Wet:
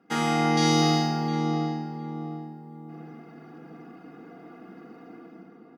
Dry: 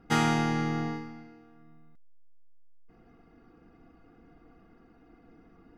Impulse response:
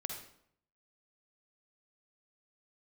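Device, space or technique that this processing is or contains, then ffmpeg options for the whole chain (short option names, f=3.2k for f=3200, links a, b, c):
far laptop microphone: -filter_complex "[0:a]asettb=1/sr,asplit=3[a][b][c];[a]atrim=end=0.574[d];[b]atrim=start=0.57:end=1.28,asetpts=PTS-STARTPTS,afade=t=in:d=0.004:c=qsin,afade=t=out:st=0.706:d=0.004:c=qsin,highshelf=f=2.8k:t=q:w=1.5:g=12.5[e];[c]atrim=start=1.276[f];[d][e]acrossfade=d=0.004:c1=hsin:c2=qsin[g];[g][f]acrossfade=d=0.004:c1=qsin:c2=hsin[h];[1:a]atrim=start_sample=2205[i];[h][i]afir=irnorm=-1:irlink=0,highpass=f=180:w=0.5412,highpass=f=180:w=1.3066,dynaudnorm=f=170:g=7:m=12dB,asplit=2[j][k];[k]adelay=708,lowpass=f=1k:p=1,volume=-3.5dB,asplit=2[l][m];[m]adelay=708,lowpass=f=1k:p=1,volume=0.42,asplit=2[n][o];[o]adelay=708,lowpass=f=1k:p=1,volume=0.42,asplit=2[p][q];[q]adelay=708,lowpass=f=1k:p=1,volume=0.42,asplit=2[r][s];[s]adelay=708,lowpass=f=1k:p=1,volume=0.42[t];[j][l][n][p][r][t]amix=inputs=6:normalize=0"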